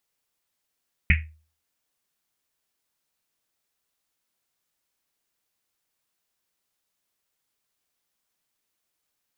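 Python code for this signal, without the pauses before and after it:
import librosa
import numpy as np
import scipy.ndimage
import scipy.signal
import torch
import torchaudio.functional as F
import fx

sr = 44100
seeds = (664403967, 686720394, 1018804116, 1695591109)

y = fx.risset_drum(sr, seeds[0], length_s=1.1, hz=78.0, decay_s=0.4, noise_hz=2200.0, noise_width_hz=840.0, noise_pct=40)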